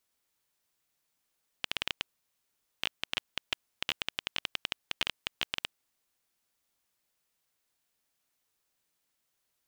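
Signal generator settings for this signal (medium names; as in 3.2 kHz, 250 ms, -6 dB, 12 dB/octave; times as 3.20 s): random clicks 10 per s -11.5 dBFS 4.31 s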